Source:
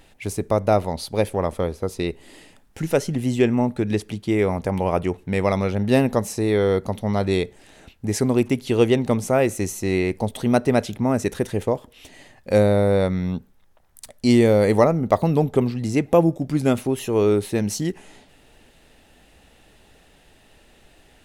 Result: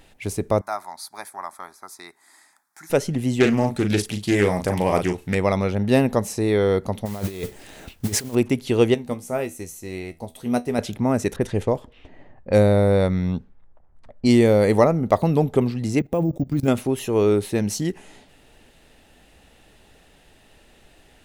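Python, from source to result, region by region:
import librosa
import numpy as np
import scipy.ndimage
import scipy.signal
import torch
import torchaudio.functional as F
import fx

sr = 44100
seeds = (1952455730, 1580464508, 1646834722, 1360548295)

y = fx.chain(x, sr, fx.highpass(hz=760.0, slope=12),
    fx.fixed_phaser(hz=1200.0, stages=4), at=(0.61, 2.9))
y = fx.chain(y, sr, fx.high_shelf(hz=2800.0, db=11.5),
    fx.doubler(ms=39.0, db=-6.5),
    fx.doppler_dist(depth_ms=0.19), at=(3.4, 5.35))
y = fx.chain(y, sr, fx.over_compress(threshold_db=-26.0, ratio=-0.5),
    fx.mod_noise(seeds[0], snr_db=14), at=(7.05, 8.35))
y = fx.chain(y, sr, fx.high_shelf(hz=10000.0, db=11.5),
    fx.comb_fb(f0_hz=81.0, decay_s=0.22, harmonics='all', damping=0.0, mix_pct=70),
    fx.upward_expand(threshold_db=-31.0, expansion=1.5), at=(8.94, 10.79))
y = fx.chain(y, sr, fx.env_lowpass(base_hz=980.0, full_db=-18.5),
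    fx.low_shelf(hz=65.0, db=9.0), at=(11.36, 14.28))
y = fx.chain(y, sr, fx.low_shelf(hz=400.0, db=7.5),
    fx.level_steps(step_db=20),
    fx.resample_bad(factor=2, down='none', up='hold'), at=(15.99, 16.68))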